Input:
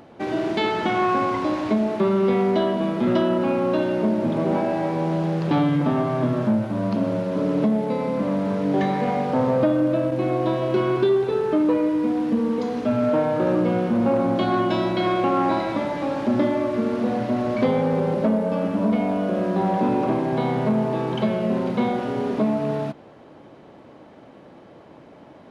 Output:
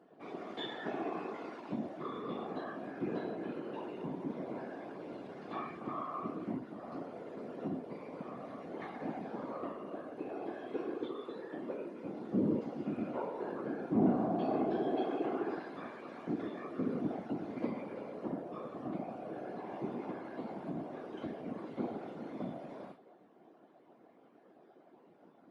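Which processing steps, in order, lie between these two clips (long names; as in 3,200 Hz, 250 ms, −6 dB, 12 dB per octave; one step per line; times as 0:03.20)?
resonators tuned to a chord A#3 fifth, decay 0.3 s
random phases in short frames
high-pass filter 220 Hz 12 dB per octave
high-shelf EQ 2,300 Hz −11 dB
level +2.5 dB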